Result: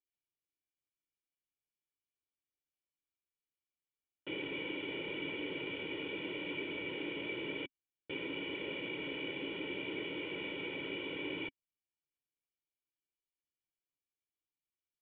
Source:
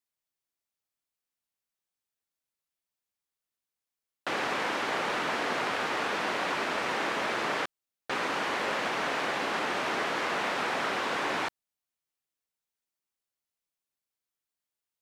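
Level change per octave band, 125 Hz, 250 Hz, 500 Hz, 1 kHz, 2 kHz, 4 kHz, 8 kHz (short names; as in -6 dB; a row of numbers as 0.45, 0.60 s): -5.0 dB, -3.0 dB, -8.5 dB, -23.0 dB, -10.5 dB, -7.0 dB, under -35 dB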